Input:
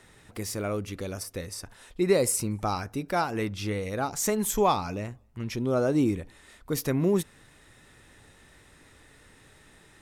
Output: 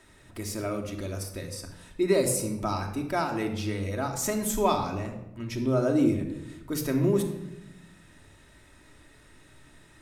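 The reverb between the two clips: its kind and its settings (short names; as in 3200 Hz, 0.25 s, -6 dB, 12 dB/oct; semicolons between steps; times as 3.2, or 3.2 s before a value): shoebox room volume 3400 m³, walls furnished, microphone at 2.8 m; gain -3 dB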